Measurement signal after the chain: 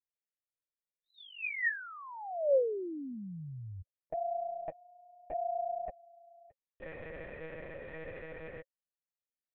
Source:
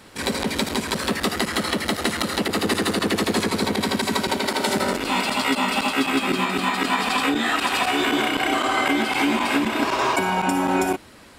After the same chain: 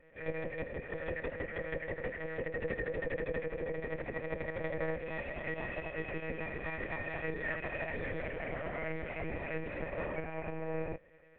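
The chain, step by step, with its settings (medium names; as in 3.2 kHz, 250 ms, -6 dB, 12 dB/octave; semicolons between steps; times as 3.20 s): cascade formant filter e; monotone LPC vocoder at 8 kHz 160 Hz; trim -2 dB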